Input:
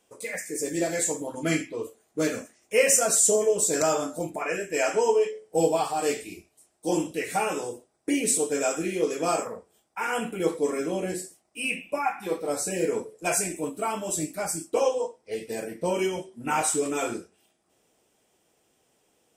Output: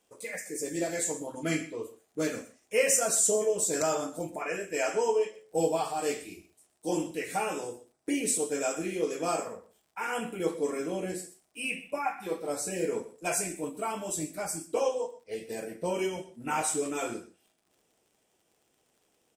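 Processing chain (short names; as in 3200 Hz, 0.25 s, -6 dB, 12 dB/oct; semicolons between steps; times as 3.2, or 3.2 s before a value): crackle 65/s -51 dBFS; echo 0.124 s -17.5 dB; gain -4.5 dB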